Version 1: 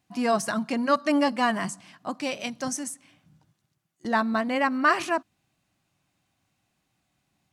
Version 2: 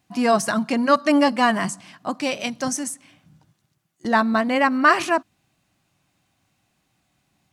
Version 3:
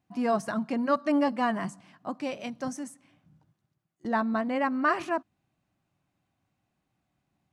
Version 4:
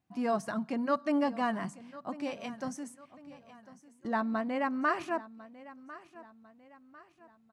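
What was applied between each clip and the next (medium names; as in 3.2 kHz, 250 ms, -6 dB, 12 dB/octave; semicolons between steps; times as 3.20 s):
de-esser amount 45%; trim +5.5 dB
treble shelf 2.2 kHz -11.5 dB; trim -7 dB
feedback delay 1049 ms, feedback 42%, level -18 dB; trim -4 dB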